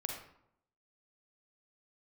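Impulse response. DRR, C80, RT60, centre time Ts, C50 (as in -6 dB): 1.0 dB, 6.5 dB, 0.75 s, 37 ms, 3.0 dB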